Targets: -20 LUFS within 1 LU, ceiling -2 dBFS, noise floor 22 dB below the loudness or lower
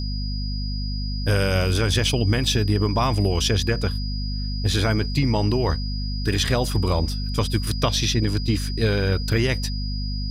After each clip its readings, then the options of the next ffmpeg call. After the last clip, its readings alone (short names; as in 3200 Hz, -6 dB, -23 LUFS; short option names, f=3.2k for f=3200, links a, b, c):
hum 50 Hz; harmonics up to 250 Hz; hum level -24 dBFS; steady tone 4900 Hz; tone level -34 dBFS; loudness -23.0 LUFS; peak -9.0 dBFS; loudness target -20.0 LUFS
-> -af "bandreject=f=50:t=h:w=4,bandreject=f=100:t=h:w=4,bandreject=f=150:t=h:w=4,bandreject=f=200:t=h:w=4,bandreject=f=250:t=h:w=4"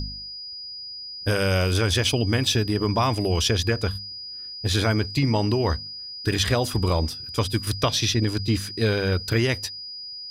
hum none; steady tone 4900 Hz; tone level -34 dBFS
-> -af "bandreject=f=4.9k:w=30"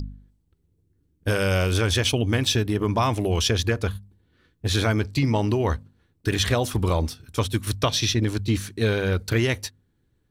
steady tone none; loudness -24.0 LUFS; peak -10.0 dBFS; loudness target -20.0 LUFS
-> -af "volume=4dB"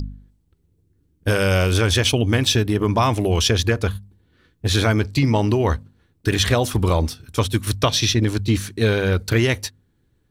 loudness -20.0 LUFS; peak -6.0 dBFS; noise floor -65 dBFS